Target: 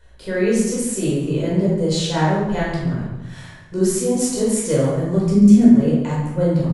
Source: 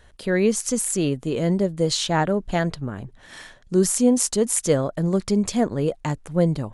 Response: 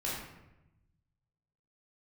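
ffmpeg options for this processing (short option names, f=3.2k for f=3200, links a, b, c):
-filter_complex "[0:a]asettb=1/sr,asplit=3[a][b][c];[a]atrim=end=5.244[d];[b]atrim=start=5.24:end=5.73,asetpts=PTS-STARTPTS,afade=t=in:d=0.004:c=qsin,afade=t=out:st=0.486:d=0.004:c=qsin,equalizer=f=250:t=o:w=1:g=12,equalizer=f=500:t=o:w=1:g=-5,equalizer=f=1k:t=o:w=1:g=-10,equalizer=f=4k:t=o:w=1:g=-6[e];[c]atrim=start=5.726[f];[d][e]acrossfade=d=0.004:c1=hsin:c2=qsin[g];[g][f]acrossfade=d=0.004:c1=qsin:c2=hsin,aecho=1:1:139|278|417:0.224|0.0604|0.0163[h];[1:a]atrim=start_sample=2205[i];[h][i]afir=irnorm=-1:irlink=0,volume=-3.5dB"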